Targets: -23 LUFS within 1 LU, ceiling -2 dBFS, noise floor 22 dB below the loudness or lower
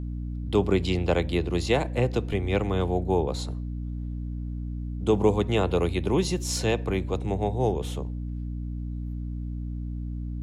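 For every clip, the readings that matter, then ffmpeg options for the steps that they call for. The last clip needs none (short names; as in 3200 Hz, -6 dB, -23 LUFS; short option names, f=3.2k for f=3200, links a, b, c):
hum 60 Hz; harmonics up to 300 Hz; hum level -29 dBFS; loudness -27.5 LUFS; peak -9.5 dBFS; loudness target -23.0 LUFS
-> -af "bandreject=f=60:t=h:w=4,bandreject=f=120:t=h:w=4,bandreject=f=180:t=h:w=4,bandreject=f=240:t=h:w=4,bandreject=f=300:t=h:w=4"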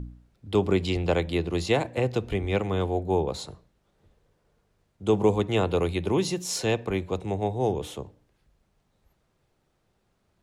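hum none; loudness -26.5 LUFS; peak -10.5 dBFS; loudness target -23.0 LUFS
-> -af "volume=3.5dB"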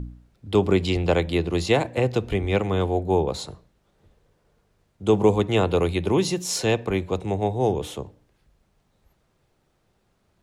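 loudness -23.0 LUFS; peak -7.0 dBFS; noise floor -68 dBFS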